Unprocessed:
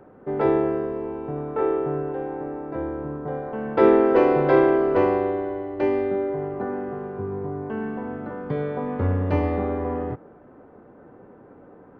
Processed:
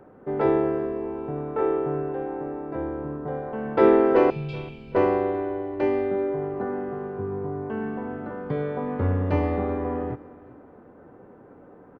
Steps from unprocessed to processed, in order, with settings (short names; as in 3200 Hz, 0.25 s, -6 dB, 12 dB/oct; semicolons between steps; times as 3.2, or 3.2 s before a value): 4.3–4.95 brick-wall FIR band-stop 240–2200 Hz; on a send: feedback echo 0.385 s, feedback 36%, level -20.5 dB; on the sum: gain -1 dB